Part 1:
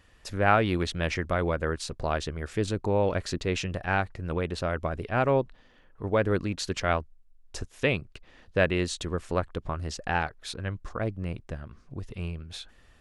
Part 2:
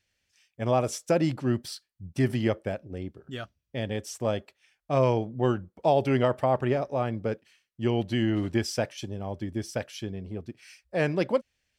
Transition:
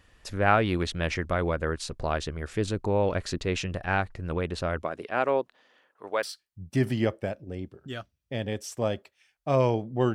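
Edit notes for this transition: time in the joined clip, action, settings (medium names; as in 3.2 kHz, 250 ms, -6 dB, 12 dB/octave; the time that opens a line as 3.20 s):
part 1
4.81–6.23 s: high-pass 240 Hz -> 610 Hz
6.23 s: go over to part 2 from 1.66 s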